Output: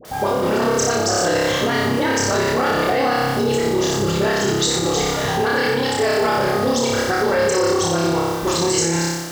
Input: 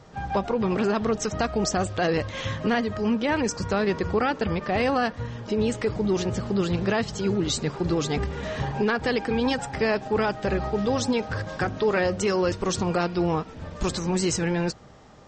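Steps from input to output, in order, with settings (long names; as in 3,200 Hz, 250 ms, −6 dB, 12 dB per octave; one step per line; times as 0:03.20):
sub-octave generator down 1 octave, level −6 dB
time stretch by overlap-add 0.61×, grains 34 ms
background noise pink −50 dBFS
high-pass filter 150 Hz 6 dB per octave
parametric band 200 Hz −8.5 dB 0.22 octaves
notch filter 2,500 Hz, Q 9.7
all-pass dispersion highs, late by 50 ms, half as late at 1,000 Hz
on a send: flutter between parallel walls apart 5.1 metres, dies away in 1.1 s
on the sum: brickwall limiter −18 dBFS, peak gain reduction 8.5 dB
bass and treble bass −4 dB, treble +4 dB
level +8.5 dB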